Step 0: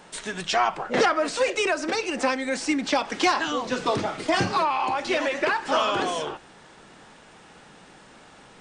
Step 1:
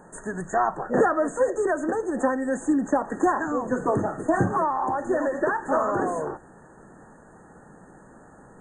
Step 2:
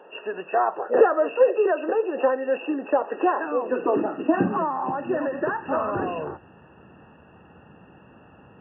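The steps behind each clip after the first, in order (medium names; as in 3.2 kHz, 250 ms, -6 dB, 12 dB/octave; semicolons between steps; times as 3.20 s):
FFT band-reject 1.9–6.3 kHz; tilt shelf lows +4.5 dB, about 770 Hz
knee-point frequency compression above 1.9 kHz 4:1; high-pass sweep 450 Hz -> 79 Hz, 3.48–5.93 s; trim -2 dB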